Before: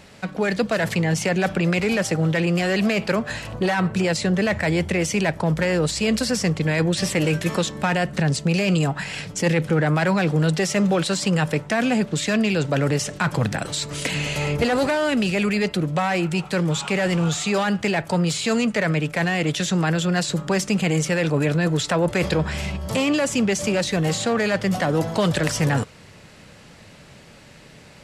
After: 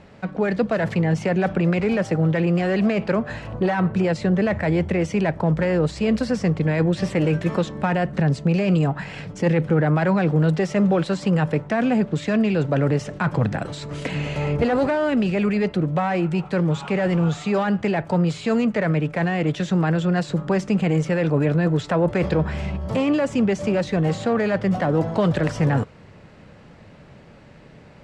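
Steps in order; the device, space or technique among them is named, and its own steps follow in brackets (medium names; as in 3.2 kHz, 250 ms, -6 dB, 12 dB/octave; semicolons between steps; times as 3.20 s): through cloth (low-pass 8.8 kHz 12 dB/octave; treble shelf 2.7 kHz -17 dB); trim +1.5 dB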